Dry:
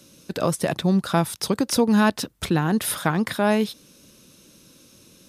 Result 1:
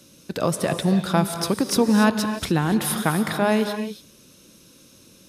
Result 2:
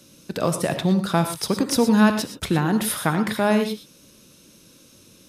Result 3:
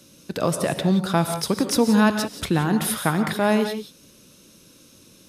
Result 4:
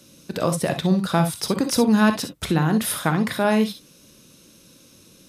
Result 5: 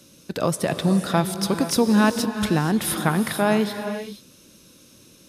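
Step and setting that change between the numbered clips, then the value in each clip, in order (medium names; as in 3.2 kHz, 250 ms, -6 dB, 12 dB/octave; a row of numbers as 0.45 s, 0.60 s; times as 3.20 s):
gated-style reverb, gate: 310 ms, 140 ms, 200 ms, 80 ms, 510 ms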